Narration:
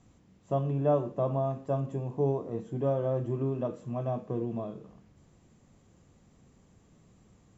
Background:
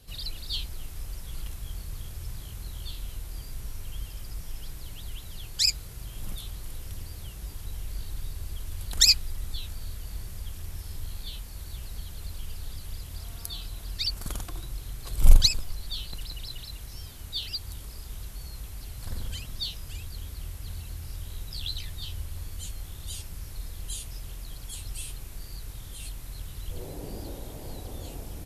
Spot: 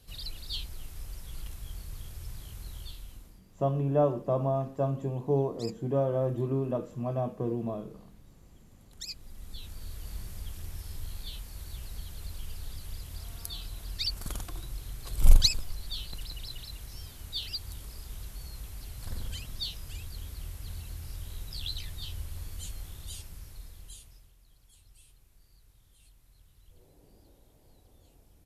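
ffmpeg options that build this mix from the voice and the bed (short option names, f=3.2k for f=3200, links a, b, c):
-filter_complex "[0:a]adelay=3100,volume=1dB[a];[1:a]volume=16.5dB,afade=t=out:st=2.76:d=0.65:silence=0.112202,afade=t=in:st=9.08:d=1.01:silence=0.0944061,afade=t=out:st=22.77:d=1.55:silence=0.112202[b];[a][b]amix=inputs=2:normalize=0"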